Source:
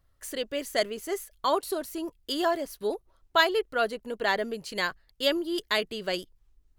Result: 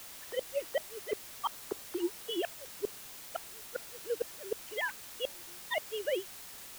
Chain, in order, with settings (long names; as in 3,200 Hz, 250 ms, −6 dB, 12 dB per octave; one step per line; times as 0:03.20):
three sine waves on the formant tracks
gate with flip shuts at −22 dBFS, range −40 dB
bit-depth reduction 8 bits, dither triangular